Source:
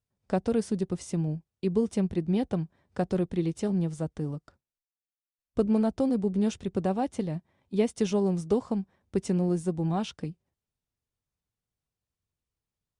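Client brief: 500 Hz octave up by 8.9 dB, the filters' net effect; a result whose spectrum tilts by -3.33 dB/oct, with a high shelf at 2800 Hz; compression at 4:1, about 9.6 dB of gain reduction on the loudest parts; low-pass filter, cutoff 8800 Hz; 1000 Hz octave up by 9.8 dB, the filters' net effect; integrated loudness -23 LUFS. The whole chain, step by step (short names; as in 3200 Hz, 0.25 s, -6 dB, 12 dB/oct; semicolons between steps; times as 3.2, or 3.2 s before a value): LPF 8800 Hz; bell 500 Hz +9 dB; bell 1000 Hz +9 dB; high shelf 2800 Hz +6 dB; compressor 4:1, threshold -24 dBFS; gain +7 dB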